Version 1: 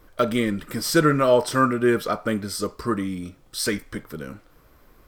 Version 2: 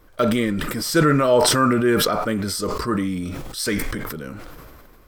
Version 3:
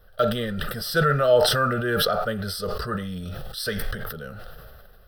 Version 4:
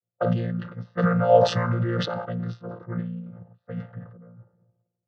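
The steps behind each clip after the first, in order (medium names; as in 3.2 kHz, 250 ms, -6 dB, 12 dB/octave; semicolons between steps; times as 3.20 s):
decay stretcher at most 23 dB/s
static phaser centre 1.5 kHz, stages 8
vocoder on a held chord bare fifth, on A#2; level-controlled noise filter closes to 570 Hz, open at -18 dBFS; three bands expanded up and down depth 70%; trim -1.5 dB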